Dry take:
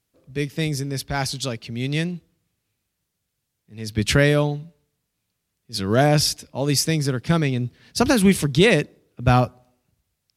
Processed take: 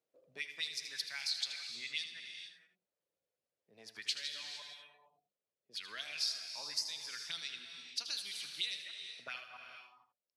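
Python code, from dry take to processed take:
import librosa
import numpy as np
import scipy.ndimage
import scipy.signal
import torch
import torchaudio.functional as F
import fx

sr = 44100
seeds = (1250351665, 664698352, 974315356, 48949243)

y = fx.reverse_delay(x, sr, ms=110, wet_db=-10)
y = scipy.signal.lfilter([1.0, -0.9], [1.0], y)
y = fx.dereverb_blind(y, sr, rt60_s=0.53)
y = fx.high_shelf(y, sr, hz=6900.0, db=-7.5)
y = fx.rider(y, sr, range_db=4, speed_s=0.5)
y = fx.auto_wah(y, sr, base_hz=520.0, top_hz=4200.0, q=3.9, full_db=-30.0, direction='up')
y = y + 10.0 ** (-10.5 / 20.0) * np.pad(y, (int(78 * sr / 1000.0), 0))[:len(y)]
y = fx.rev_gated(y, sr, seeds[0], gate_ms=490, shape='flat', drr_db=7.5)
y = fx.band_squash(y, sr, depth_pct=40)
y = F.gain(torch.from_numpy(y), 3.0).numpy()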